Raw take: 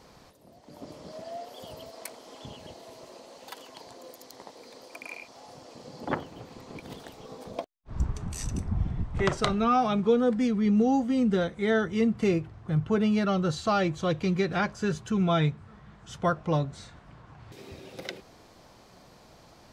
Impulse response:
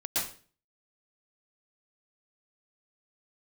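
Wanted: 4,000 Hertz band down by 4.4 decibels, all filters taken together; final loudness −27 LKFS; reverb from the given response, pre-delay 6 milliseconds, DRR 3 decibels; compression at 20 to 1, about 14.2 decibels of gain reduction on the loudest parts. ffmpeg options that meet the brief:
-filter_complex "[0:a]equalizer=frequency=4000:width_type=o:gain=-5.5,acompressor=threshold=-33dB:ratio=20,asplit=2[link_01][link_02];[1:a]atrim=start_sample=2205,adelay=6[link_03];[link_02][link_03]afir=irnorm=-1:irlink=0,volume=-10dB[link_04];[link_01][link_04]amix=inputs=2:normalize=0,volume=11.5dB"

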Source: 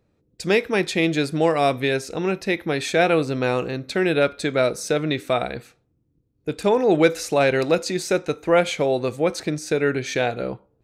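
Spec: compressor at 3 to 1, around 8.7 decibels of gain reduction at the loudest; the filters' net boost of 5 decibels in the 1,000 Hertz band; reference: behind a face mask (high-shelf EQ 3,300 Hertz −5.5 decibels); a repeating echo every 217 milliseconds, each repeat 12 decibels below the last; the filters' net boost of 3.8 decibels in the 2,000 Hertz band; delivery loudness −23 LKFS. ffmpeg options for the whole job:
ffmpeg -i in.wav -af "equalizer=frequency=1000:width_type=o:gain=7,equalizer=frequency=2000:width_type=o:gain=4.5,acompressor=threshold=-21dB:ratio=3,highshelf=frequency=3300:gain=-5.5,aecho=1:1:217|434|651:0.251|0.0628|0.0157,volume=2.5dB" out.wav

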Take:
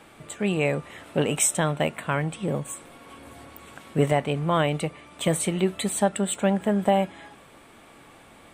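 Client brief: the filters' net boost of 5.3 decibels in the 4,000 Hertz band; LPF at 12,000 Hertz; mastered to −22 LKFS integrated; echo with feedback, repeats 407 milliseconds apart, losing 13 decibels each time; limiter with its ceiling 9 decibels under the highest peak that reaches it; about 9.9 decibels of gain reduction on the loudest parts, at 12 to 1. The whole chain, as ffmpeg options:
ffmpeg -i in.wav -af "lowpass=12000,equalizer=frequency=4000:width_type=o:gain=7.5,acompressor=threshold=-26dB:ratio=12,alimiter=limit=-22dB:level=0:latency=1,aecho=1:1:407|814|1221:0.224|0.0493|0.0108,volume=12dB" out.wav

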